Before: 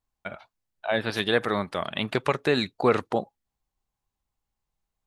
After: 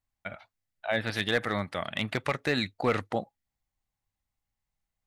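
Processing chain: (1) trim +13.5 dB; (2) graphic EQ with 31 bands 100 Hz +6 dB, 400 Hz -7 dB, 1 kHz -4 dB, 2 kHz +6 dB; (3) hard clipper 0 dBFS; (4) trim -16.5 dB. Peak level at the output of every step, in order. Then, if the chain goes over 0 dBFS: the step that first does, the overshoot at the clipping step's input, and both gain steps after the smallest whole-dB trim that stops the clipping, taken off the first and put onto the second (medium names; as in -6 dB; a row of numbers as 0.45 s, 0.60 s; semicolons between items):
+6.0 dBFS, +5.5 dBFS, 0.0 dBFS, -16.5 dBFS; step 1, 5.5 dB; step 1 +7.5 dB, step 4 -10.5 dB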